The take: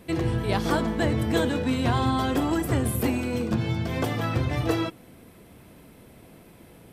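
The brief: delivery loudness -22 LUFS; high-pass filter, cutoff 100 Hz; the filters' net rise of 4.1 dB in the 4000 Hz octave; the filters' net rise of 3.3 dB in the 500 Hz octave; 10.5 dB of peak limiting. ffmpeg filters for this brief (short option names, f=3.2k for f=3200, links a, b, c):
-af "highpass=100,equalizer=f=500:t=o:g=4,equalizer=f=4k:t=o:g=5,volume=6dB,alimiter=limit=-13dB:level=0:latency=1"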